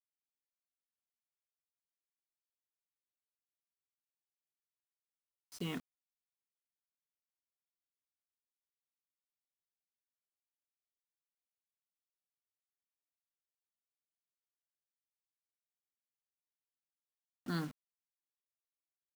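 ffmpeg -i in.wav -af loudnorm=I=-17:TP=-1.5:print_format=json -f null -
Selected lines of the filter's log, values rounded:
"input_i" : "-42.2",
"input_tp" : "-25.4",
"input_lra" : "2.1",
"input_thresh" : "-52.9",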